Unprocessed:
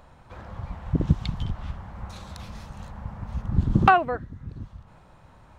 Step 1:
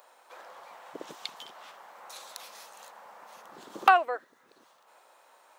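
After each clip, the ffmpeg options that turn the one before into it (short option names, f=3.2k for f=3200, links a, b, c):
-af "highpass=f=450:w=0.5412,highpass=f=450:w=1.3066,aemphasis=mode=production:type=50fm,volume=-2.5dB"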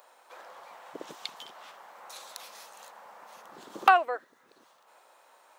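-af anull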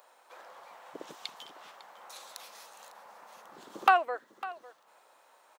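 -af "aecho=1:1:552:0.141,volume=-2.5dB"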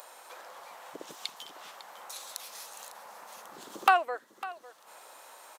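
-af "acompressor=mode=upward:threshold=-42dB:ratio=2.5,aemphasis=mode=production:type=cd" -ar 32000 -c:a ac3 -b:a 192k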